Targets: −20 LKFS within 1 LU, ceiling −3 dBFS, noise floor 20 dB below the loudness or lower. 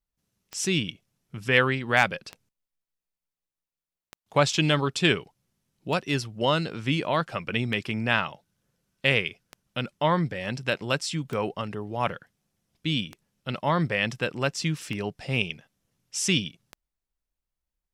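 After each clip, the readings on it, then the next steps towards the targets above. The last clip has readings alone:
number of clicks 10; integrated loudness −26.5 LKFS; sample peak −5.5 dBFS; target loudness −20.0 LKFS
→ click removal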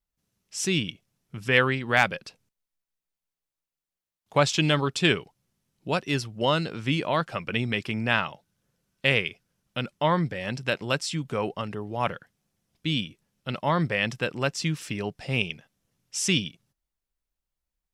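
number of clicks 0; integrated loudness −26.5 LKFS; sample peak −5.5 dBFS; target loudness −20.0 LKFS
→ level +6.5 dB
brickwall limiter −3 dBFS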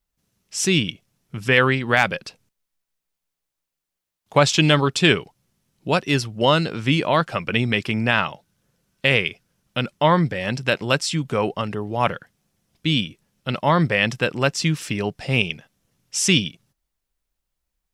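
integrated loudness −20.5 LKFS; sample peak −3.0 dBFS; background noise floor −83 dBFS

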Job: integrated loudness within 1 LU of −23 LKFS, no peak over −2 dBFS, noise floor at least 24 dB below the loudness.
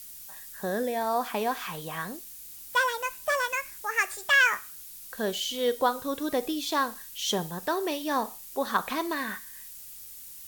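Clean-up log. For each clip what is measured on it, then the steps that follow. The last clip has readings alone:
background noise floor −45 dBFS; target noise floor −53 dBFS; integrated loudness −28.5 LKFS; sample peak −11.0 dBFS; target loudness −23.0 LKFS
→ noise reduction from a noise print 8 dB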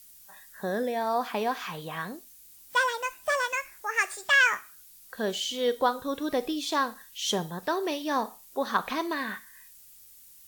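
background noise floor −53 dBFS; integrated loudness −28.5 LKFS; sample peak −11.0 dBFS; target loudness −23.0 LKFS
→ level +5.5 dB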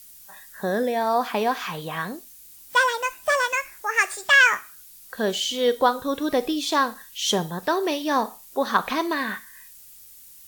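integrated loudness −23.0 LKFS; sample peak −5.5 dBFS; background noise floor −47 dBFS

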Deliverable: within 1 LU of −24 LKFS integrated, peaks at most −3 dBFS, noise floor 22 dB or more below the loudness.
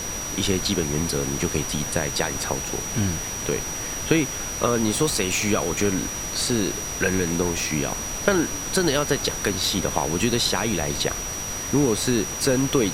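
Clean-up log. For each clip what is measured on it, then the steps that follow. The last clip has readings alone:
interfering tone 5,800 Hz; level of the tone −30 dBFS; background noise floor −30 dBFS; target noise floor −46 dBFS; integrated loudness −23.5 LKFS; sample peak −4.5 dBFS; target loudness −24.0 LKFS
→ notch filter 5,800 Hz, Q 30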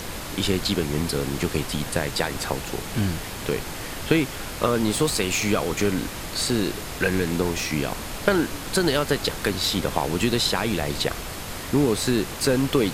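interfering tone none found; background noise floor −34 dBFS; target noise floor −47 dBFS
→ noise reduction from a noise print 13 dB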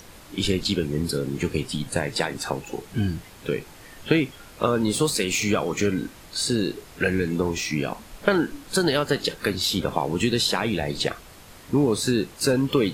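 background noise floor −46 dBFS; target noise floor −47 dBFS
→ noise reduction from a noise print 6 dB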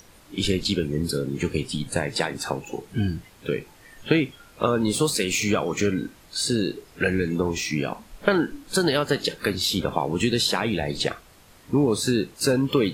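background noise floor −52 dBFS; integrated loudness −25.0 LKFS; sample peak −4.5 dBFS; target loudness −24.0 LKFS
→ level +1 dB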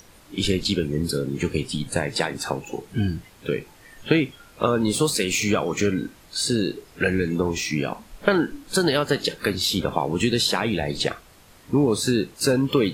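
integrated loudness −24.0 LKFS; sample peak −3.5 dBFS; background noise floor −51 dBFS

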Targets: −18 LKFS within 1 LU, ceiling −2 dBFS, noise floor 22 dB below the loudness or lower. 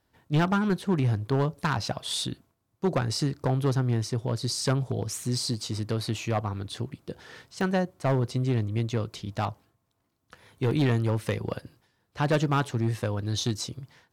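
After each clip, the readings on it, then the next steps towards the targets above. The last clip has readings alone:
share of clipped samples 1.2%; peaks flattened at −18.5 dBFS; number of dropouts 3; longest dropout 1.3 ms; integrated loudness −28.5 LKFS; sample peak −18.5 dBFS; target loudness −18.0 LKFS
→ clipped peaks rebuilt −18.5 dBFS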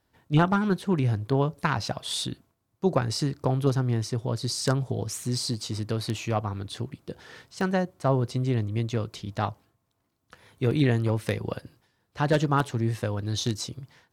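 share of clipped samples 0.0%; number of dropouts 3; longest dropout 1.3 ms
→ repair the gap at 0:05.54/0:07.61/0:10.71, 1.3 ms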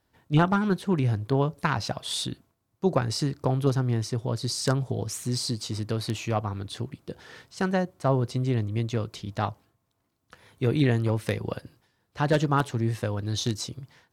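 number of dropouts 0; integrated loudness −27.5 LKFS; sample peak −9.5 dBFS; target loudness −18.0 LKFS
→ level +9.5 dB
brickwall limiter −2 dBFS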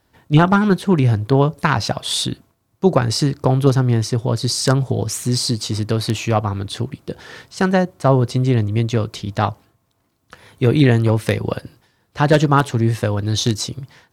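integrated loudness −18.0 LKFS; sample peak −2.0 dBFS; background noise floor −65 dBFS

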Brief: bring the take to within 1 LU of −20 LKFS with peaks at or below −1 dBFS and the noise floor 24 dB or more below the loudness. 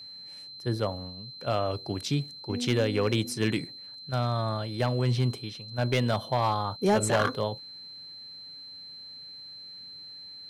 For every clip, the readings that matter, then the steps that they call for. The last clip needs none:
share of clipped samples 0.4%; peaks flattened at −17.5 dBFS; interfering tone 4,100 Hz; level of the tone −42 dBFS; integrated loudness −29.0 LKFS; sample peak −17.5 dBFS; target loudness −20.0 LKFS
→ clipped peaks rebuilt −17.5 dBFS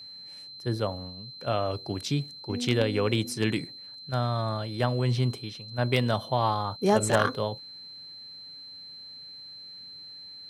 share of clipped samples 0.0%; interfering tone 4,100 Hz; level of the tone −42 dBFS
→ notch filter 4,100 Hz, Q 30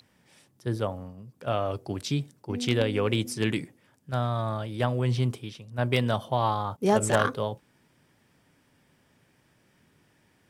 interfering tone none found; integrated loudness −28.5 LKFS; sample peak −8.5 dBFS; target loudness −20.0 LKFS
→ level +8.5 dB
brickwall limiter −1 dBFS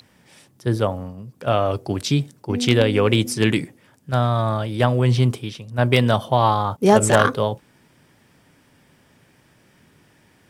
integrated loudness −20.0 LKFS; sample peak −1.0 dBFS; background noise floor −58 dBFS

